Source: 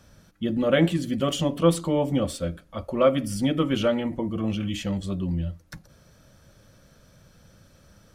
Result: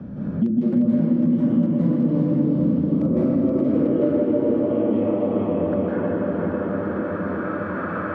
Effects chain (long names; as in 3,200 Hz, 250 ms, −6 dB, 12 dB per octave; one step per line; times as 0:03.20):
delay that plays each chunk backwards 264 ms, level −8 dB
Bessel low-pass filter 2,200 Hz, order 2
low-shelf EQ 120 Hz −3 dB
hum removal 266.4 Hz, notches 4
downward compressor 16 to 1, threshold −23 dBFS, peak gain reduction 11 dB
wrap-around overflow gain 17.5 dB
band-pass filter sweep 210 Hz → 1,300 Hz, 0:02.40–0:06.29
feedback delay with all-pass diffusion 459 ms, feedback 49%, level −7 dB
convolution reverb RT60 3.1 s, pre-delay 154 ms, DRR −11 dB
multiband upward and downward compressor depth 100%